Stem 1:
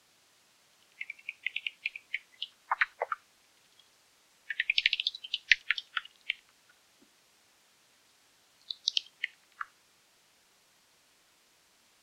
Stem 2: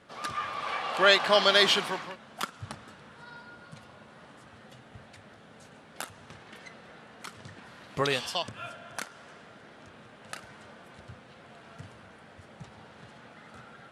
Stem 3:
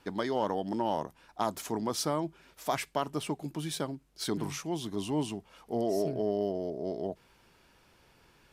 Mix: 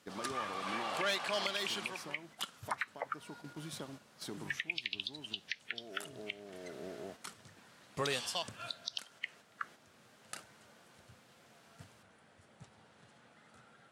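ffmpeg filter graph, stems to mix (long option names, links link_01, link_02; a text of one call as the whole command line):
ffmpeg -i stem1.wav -i stem2.wav -i stem3.wav -filter_complex "[0:a]volume=2.5dB[link_01];[1:a]equalizer=frequency=8900:width_type=o:width=1.5:gain=8.5,asoftclip=type=tanh:threshold=-16dB,volume=-6.5dB[link_02];[2:a]acompressor=threshold=-31dB:ratio=6,volume=-9dB[link_03];[link_01][link_02][link_03]amix=inputs=3:normalize=0,highpass=70,agate=range=-6dB:threshold=-49dB:ratio=16:detection=peak,alimiter=limit=-23.5dB:level=0:latency=1:release=482" out.wav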